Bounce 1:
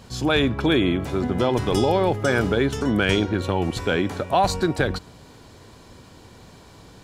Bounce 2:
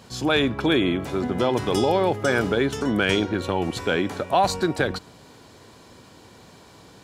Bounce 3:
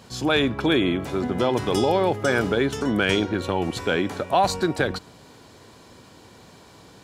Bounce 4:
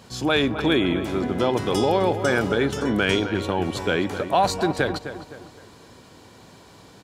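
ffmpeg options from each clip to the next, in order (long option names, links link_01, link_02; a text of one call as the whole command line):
ffmpeg -i in.wav -af "highpass=frequency=160:poles=1" out.wav
ffmpeg -i in.wav -af anull out.wav
ffmpeg -i in.wav -filter_complex "[0:a]asplit=2[link_01][link_02];[link_02]adelay=258,lowpass=frequency=2600:poles=1,volume=-10.5dB,asplit=2[link_03][link_04];[link_04]adelay=258,lowpass=frequency=2600:poles=1,volume=0.42,asplit=2[link_05][link_06];[link_06]adelay=258,lowpass=frequency=2600:poles=1,volume=0.42,asplit=2[link_07][link_08];[link_08]adelay=258,lowpass=frequency=2600:poles=1,volume=0.42[link_09];[link_01][link_03][link_05][link_07][link_09]amix=inputs=5:normalize=0" out.wav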